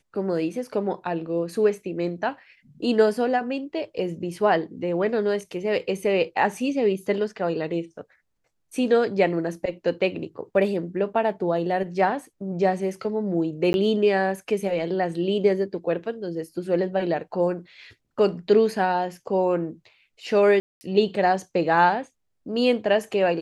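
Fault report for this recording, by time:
13.73–13.74 s: dropout 11 ms
20.60–20.81 s: dropout 210 ms

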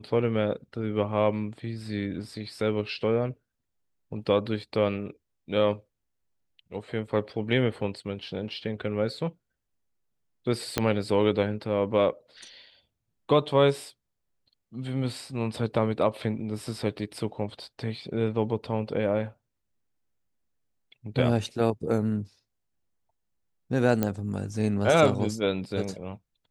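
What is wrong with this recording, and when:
10.78 s: pop -7 dBFS
24.03 s: pop -12 dBFS

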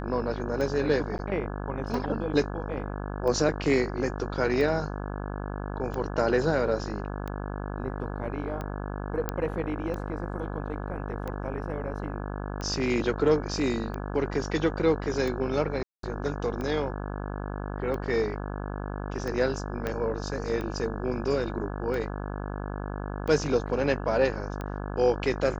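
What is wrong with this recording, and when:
buzz 50 Hz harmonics 34 -34 dBFS
tick 45 rpm -22 dBFS
1.18–1.19 s: dropout 9.5 ms
9.29 s: pop -13 dBFS
15.83–16.03 s: dropout 203 ms
19.87 s: pop -16 dBFS

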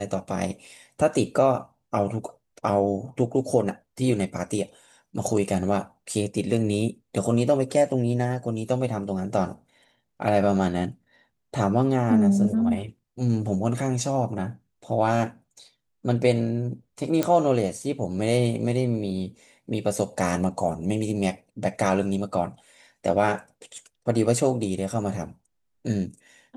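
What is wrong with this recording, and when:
17.23 s: pop -10 dBFS

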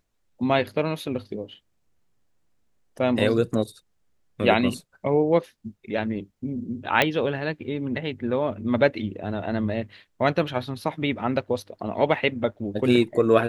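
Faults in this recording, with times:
7.02 s: pop -5 dBFS

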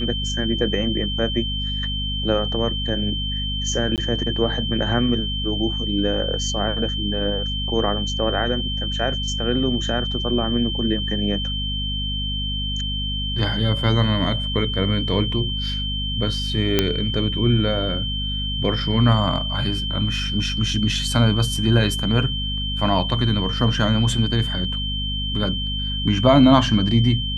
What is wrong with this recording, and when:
hum 50 Hz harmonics 5 -27 dBFS
whine 3.1 kHz -26 dBFS
3.96–3.98 s: dropout 18 ms
16.79 s: pop -2 dBFS

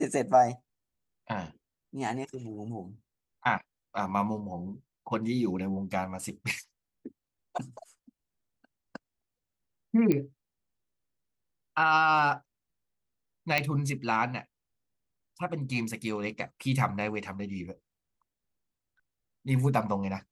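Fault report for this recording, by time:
10.12 s: pop -15 dBFS
13.58 s: pop -11 dBFS

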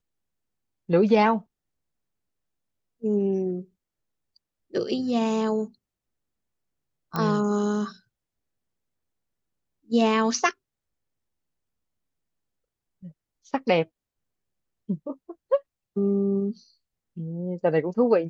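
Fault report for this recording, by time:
7.16 s: pop -14 dBFS

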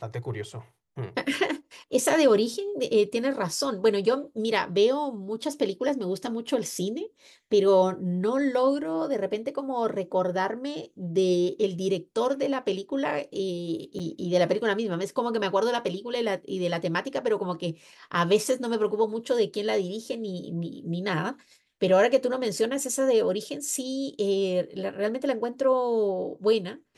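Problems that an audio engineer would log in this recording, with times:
13.99–14.00 s: dropout 6 ms

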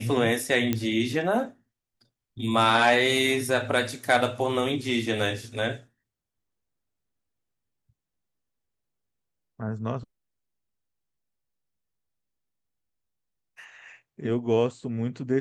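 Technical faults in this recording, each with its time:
0.73 s: pop -11 dBFS

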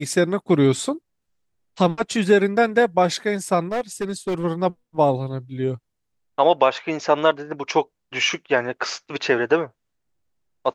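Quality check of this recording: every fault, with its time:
3.72–4.45 s: clipped -20 dBFS

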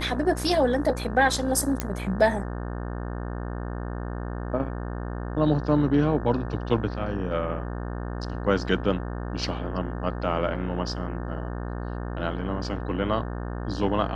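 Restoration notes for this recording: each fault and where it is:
buzz 60 Hz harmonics 30 -32 dBFS
1.80 s: pop -10 dBFS

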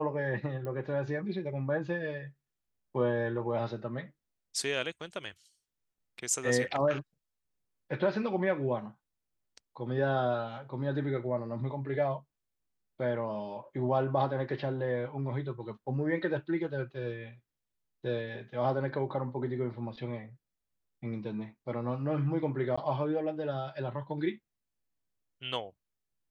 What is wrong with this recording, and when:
0.65 s: pop -28 dBFS
22.76–22.77 s: dropout 15 ms

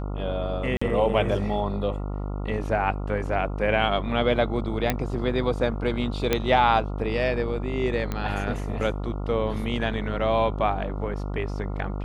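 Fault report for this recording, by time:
buzz 50 Hz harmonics 28 -30 dBFS
0.77–0.81 s: dropout 45 ms
4.90 s: pop -8 dBFS
6.33 s: pop -7 dBFS
8.12 s: pop -15 dBFS

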